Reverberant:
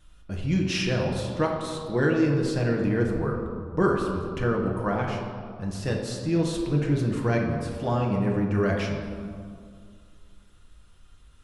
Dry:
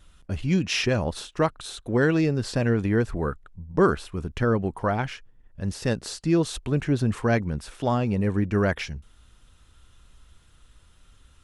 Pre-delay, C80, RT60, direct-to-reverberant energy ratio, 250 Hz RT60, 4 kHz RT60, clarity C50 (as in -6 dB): 6 ms, 5.0 dB, 2.2 s, -1.0 dB, 2.6 s, 1.1 s, 3.0 dB